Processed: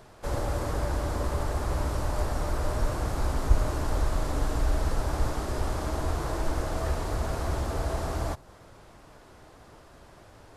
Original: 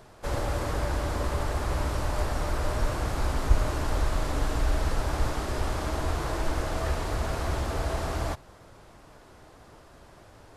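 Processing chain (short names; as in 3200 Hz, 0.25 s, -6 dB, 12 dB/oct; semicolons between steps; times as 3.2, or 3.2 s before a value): dynamic EQ 2600 Hz, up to -5 dB, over -50 dBFS, Q 0.77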